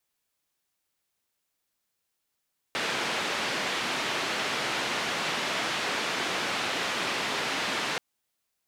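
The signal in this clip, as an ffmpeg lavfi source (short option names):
-f lavfi -i "anoisesrc=c=white:d=5.23:r=44100:seed=1,highpass=f=180,lowpass=f=3100,volume=-16.8dB"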